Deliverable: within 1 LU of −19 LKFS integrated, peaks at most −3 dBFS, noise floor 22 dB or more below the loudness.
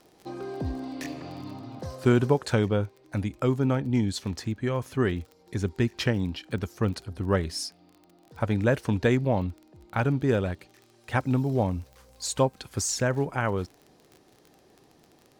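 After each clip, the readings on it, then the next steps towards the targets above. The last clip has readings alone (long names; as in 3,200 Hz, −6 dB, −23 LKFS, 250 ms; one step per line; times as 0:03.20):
crackle rate 30 per second; integrated loudness −28.0 LKFS; sample peak −9.5 dBFS; target loudness −19.0 LKFS
→ click removal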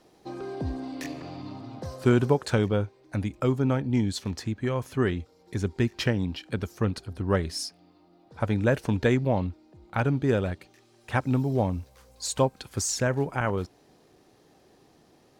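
crackle rate 0.13 per second; integrated loudness −28.0 LKFS; sample peak −9.5 dBFS; target loudness −19.0 LKFS
→ level +9 dB
brickwall limiter −3 dBFS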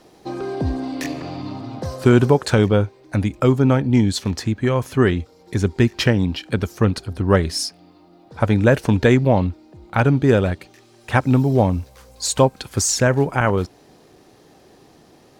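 integrated loudness −19.0 LKFS; sample peak −3.0 dBFS; background noise floor −51 dBFS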